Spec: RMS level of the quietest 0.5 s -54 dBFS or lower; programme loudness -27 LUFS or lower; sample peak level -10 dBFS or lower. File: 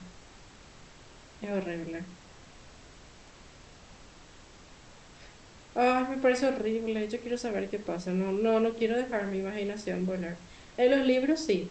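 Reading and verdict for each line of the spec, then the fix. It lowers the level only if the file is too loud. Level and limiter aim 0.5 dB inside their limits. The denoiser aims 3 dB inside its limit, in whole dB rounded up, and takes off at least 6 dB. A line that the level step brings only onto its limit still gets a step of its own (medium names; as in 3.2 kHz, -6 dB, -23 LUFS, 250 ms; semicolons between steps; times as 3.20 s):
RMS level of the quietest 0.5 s -52 dBFS: fail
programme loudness -29.5 LUFS: pass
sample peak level -13.5 dBFS: pass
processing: noise reduction 6 dB, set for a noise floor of -52 dBFS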